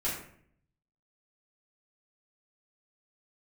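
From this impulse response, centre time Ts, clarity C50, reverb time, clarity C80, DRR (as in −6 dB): 42 ms, 3.5 dB, 0.60 s, 7.5 dB, −8.5 dB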